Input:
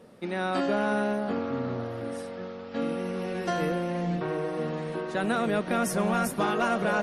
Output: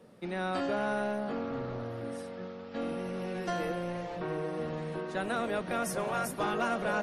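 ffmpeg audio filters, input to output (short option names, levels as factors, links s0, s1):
-filter_complex "[0:a]equalizer=f=150:t=o:w=0.86:g=4,bandreject=f=50:t=h:w=6,bandreject=f=100:t=h:w=6,bandreject=f=150:t=h:w=6,bandreject=f=200:t=h:w=6,bandreject=f=250:t=h:w=6,acrossover=split=290|2300[s0][s1][s2];[s0]aeval=exprs='0.0237*(abs(mod(val(0)/0.0237+3,4)-2)-1)':c=same[s3];[s3][s1][s2]amix=inputs=3:normalize=0,volume=0.596"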